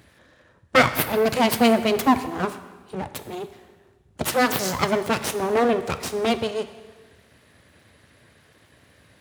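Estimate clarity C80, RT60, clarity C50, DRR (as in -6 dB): 13.5 dB, 1.4 s, 12.0 dB, 10.0 dB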